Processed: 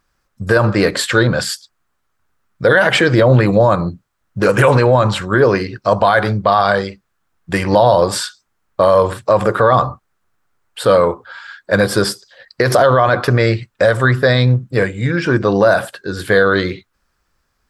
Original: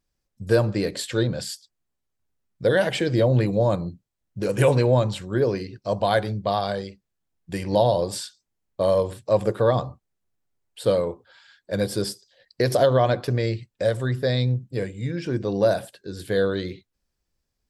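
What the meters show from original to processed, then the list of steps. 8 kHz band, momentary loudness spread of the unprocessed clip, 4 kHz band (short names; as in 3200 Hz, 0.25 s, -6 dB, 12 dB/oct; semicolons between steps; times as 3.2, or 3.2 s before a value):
+9.5 dB, 14 LU, +10.0 dB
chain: bell 1300 Hz +14.5 dB 1.2 oct; maximiser +11 dB; Doppler distortion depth 0.11 ms; gain -1 dB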